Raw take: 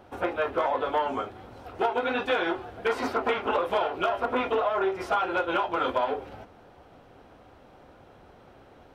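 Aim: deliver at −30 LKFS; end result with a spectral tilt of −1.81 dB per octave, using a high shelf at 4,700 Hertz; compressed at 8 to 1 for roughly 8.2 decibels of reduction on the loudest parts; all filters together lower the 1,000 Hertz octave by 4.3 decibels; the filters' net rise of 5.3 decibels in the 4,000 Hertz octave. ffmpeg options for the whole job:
ffmpeg -i in.wav -af "equalizer=frequency=1000:width_type=o:gain=-6.5,equalizer=frequency=4000:width_type=o:gain=4,highshelf=frequency=4700:gain=8,acompressor=threshold=-31dB:ratio=8,volume=5.5dB" out.wav

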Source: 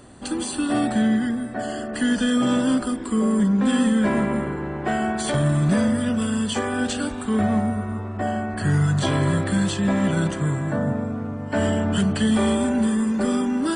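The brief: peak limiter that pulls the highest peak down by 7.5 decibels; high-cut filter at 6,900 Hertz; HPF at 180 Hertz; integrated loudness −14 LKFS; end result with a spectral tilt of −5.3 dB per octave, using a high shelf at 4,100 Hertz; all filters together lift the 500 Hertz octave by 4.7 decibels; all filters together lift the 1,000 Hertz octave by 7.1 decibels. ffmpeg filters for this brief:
ffmpeg -i in.wav -af "highpass=180,lowpass=6900,equalizer=frequency=500:width_type=o:gain=3.5,equalizer=frequency=1000:width_type=o:gain=8,highshelf=frequency=4100:gain=4.5,volume=9.5dB,alimiter=limit=-5dB:level=0:latency=1" out.wav

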